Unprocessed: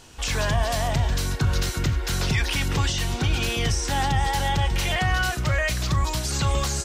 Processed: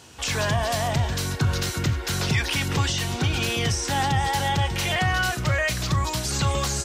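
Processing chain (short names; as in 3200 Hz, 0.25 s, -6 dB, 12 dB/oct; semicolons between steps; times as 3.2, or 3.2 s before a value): HPF 71 Hz 24 dB/oct; gain +1 dB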